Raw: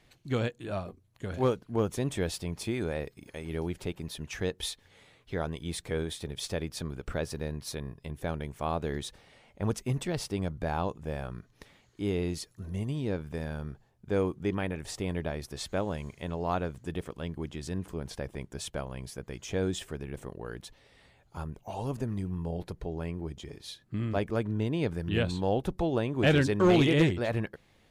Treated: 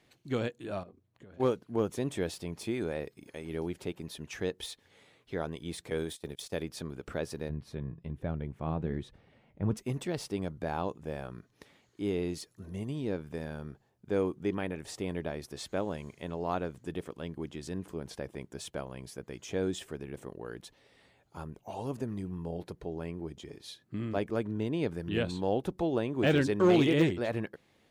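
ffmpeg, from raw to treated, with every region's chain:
ffmpeg -i in.wav -filter_complex "[0:a]asettb=1/sr,asplit=3[link_01][link_02][link_03];[link_01]atrim=end=0.834[link_04];[link_02]atrim=start=0.83:end=1.4,asetpts=PTS-STARTPTS,afade=type=in:duration=0.004:curve=qsin,afade=type=out:start_time=0.566:duration=0.004:curve=qsin,lowpass=frequency=2400:poles=1,acompressor=threshold=-45dB:ratio=10:attack=3.2:release=140:knee=1:detection=peak[link_05];[link_03]atrim=start=1.396[link_06];[link_04][link_05]acrossfade=duration=0.004:curve1=hsin:curve2=qsin[link_07];[link_07][link_06]acrossfade=duration=0.004:curve1=qsin:curve2=hsin,asettb=1/sr,asplit=3[link_08][link_09][link_10];[link_08]atrim=end=5.904[link_11];[link_09]atrim=start=5.9:end=6.63,asetpts=PTS-STARTPTS,afade=type=in:duration=0.004:curve=qsin,afade=type=out:start_time=0.726:duration=0.004:curve=qsin,agate=range=-19dB:threshold=-40dB:ratio=16:release=100:detection=peak,highshelf=frequency=5000:gain=9[link_12];[link_10]atrim=start=6.626[link_13];[link_11][link_12]acrossfade=duration=0.004:curve1=hsin:curve2=qsin[link_14];[link_14][link_13]acrossfade=duration=0.004:curve1=qsin:curve2=hsin,asettb=1/sr,asplit=3[link_15][link_16][link_17];[link_15]atrim=end=7.494[link_18];[link_16]atrim=start=7.49:end=9.77,asetpts=PTS-STARTPTS,afade=type=in:duration=0.004:curve=qsin,afade=type=out:start_time=2.276:duration=0.004:curve=qsin,bass=frequency=250:gain=13,treble=frequency=4000:gain=-14,flanger=delay=1.4:depth=5.1:regen=71:speed=1.2:shape=sinusoidal[link_19];[link_17]atrim=start=9.766[link_20];[link_18][link_19]acrossfade=duration=0.004:curve1=hsin:curve2=qsin[link_21];[link_21][link_20]acrossfade=duration=0.004:curve1=qsin:curve2=hsin,highpass=frequency=130:poles=1,deesser=0.75,equalizer=frequency=320:width=0.95:gain=3.5,volume=-3dB" out.wav

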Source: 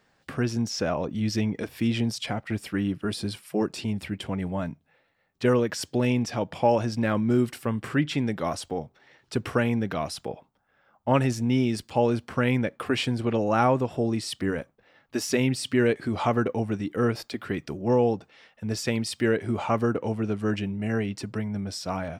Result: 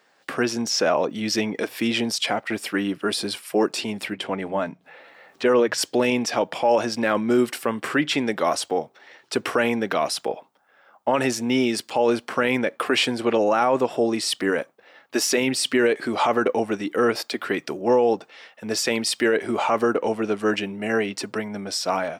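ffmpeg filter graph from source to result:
ffmpeg -i in.wav -filter_complex "[0:a]asettb=1/sr,asplit=3[link_01][link_02][link_03];[link_01]atrim=end=4.134[link_04];[link_02]atrim=start=4.13:end=5.78,asetpts=PTS-STARTPTS,afade=type=in:duration=0.004:curve=qsin,afade=type=out:start_time=1.646:duration=0.004:curve=qsin,lowpass=frequency=3900:poles=1,acompressor=mode=upward:threshold=-42dB:ratio=2.5:attack=3.2:release=140:knee=2.83:detection=peak,bandreject=frequency=60:width_type=h:width=6,bandreject=frequency=120:width_type=h:width=6,bandreject=frequency=180:width_type=h:width=6[link_05];[link_03]atrim=start=5.776[link_06];[link_04][link_05]acrossfade=duration=0.004:curve1=hsin:curve2=qsin[link_07];[link_07][link_06]acrossfade=duration=0.004:curve1=qsin:curve2=hsin,dynaudnorm=framelen=150:gausssize=3:maxgain=3.5dB,highpass=360,alimiter=limit=-15.5dB:level=0:latency=1:release=25,volume=5.5dB" out.wav

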